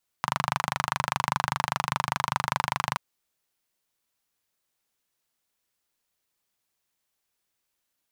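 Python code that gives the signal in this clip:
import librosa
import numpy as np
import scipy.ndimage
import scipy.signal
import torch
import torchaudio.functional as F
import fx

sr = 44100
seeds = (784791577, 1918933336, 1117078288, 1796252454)

y = fx.engine_single(sr, seeds[0], length_s=2.73, rpm=3000, resonances_hz=(140.0, 970.0))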